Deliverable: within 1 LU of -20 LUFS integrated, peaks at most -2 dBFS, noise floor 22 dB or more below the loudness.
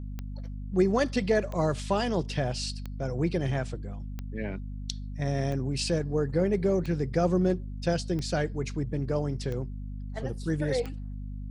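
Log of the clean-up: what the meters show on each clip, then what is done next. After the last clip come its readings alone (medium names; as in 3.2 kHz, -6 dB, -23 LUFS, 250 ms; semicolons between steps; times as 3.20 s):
clicks found 9; hum 50 Hz; highest harmonic 250 Hz; hum level -34 dBFS; loudness -29.5 LUFS; peak level -12.0 dBFS; loudness target -20.0 LUFS
-> de-click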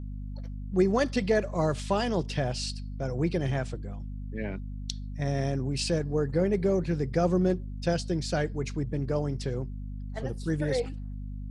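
clicks found 0; hum 50 Hz; highest harmonic 250 Hz; hum level -34 dBFS
-> de-hum 50 Hz, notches 5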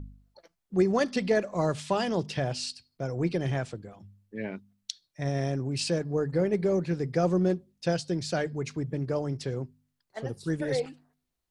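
hum not found; loudness -29.5 LUFS; peak level -12.5 dBFS; loudness target -20.0 LUFS
-> trim +9.5 dB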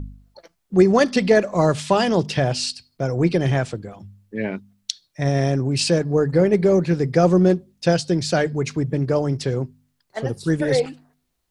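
loudness -20.0 LUFS; peak level -3.0 dBFS; noise floor -72 dBFS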